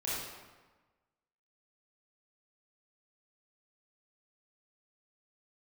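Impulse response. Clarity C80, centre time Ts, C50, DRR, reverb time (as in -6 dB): 1.0 dB, 96 ms, -3.0 dB, -8.5 dB, 1.3 s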